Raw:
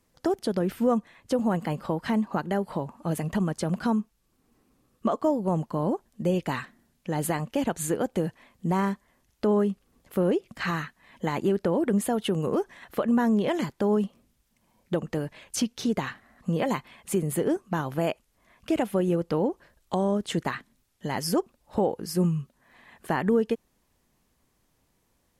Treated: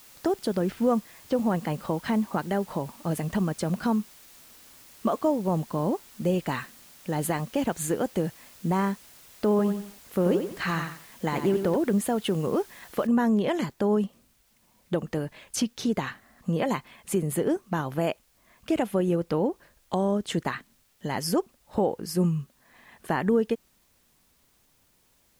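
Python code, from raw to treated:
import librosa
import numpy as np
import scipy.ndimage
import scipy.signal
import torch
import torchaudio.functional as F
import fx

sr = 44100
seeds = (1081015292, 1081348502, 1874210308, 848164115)

y = fx.env_lowpass(x, sr, base_hz=2900.0, full_db=-18.0, at=(0.62, 1.37))
y = fx.echo_crushed(y, sr, ms=89, feedback_pct=35, bits=8, wet_db=-7.0, at=(9.5, 11.76))
y = fx.noise_floor_step(y, sr, seeds[0], at_s=13.07, before_db=-52, after_db=-67, tilt_db=0.0)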